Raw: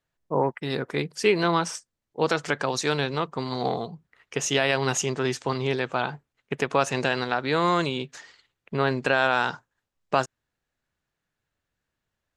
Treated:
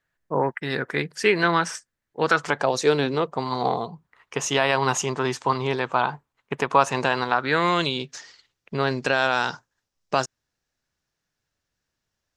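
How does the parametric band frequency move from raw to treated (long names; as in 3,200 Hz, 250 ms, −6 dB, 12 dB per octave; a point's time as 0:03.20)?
parametric band +10 dB 0.7 octaves
0:02.23 1,700 Hz
0:03.08 280 Hz
0:03.48 1,000 Hz
0:07.32 1,000 Hz
0:08.05 5,500 Hz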